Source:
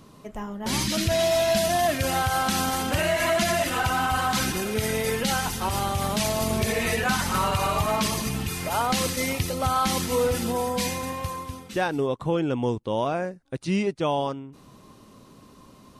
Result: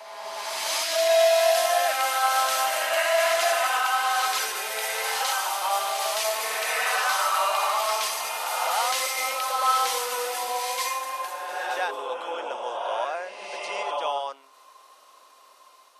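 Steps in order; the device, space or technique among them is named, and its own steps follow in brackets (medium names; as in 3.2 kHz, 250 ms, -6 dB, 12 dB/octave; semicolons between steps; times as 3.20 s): ghost voice (reverse; reverberation RT60 2.2 s, pre-delay 83 ms, DRR -0.5 dB; reverse; high-pass 630 Hz 24 dB/octave); trim -1 dB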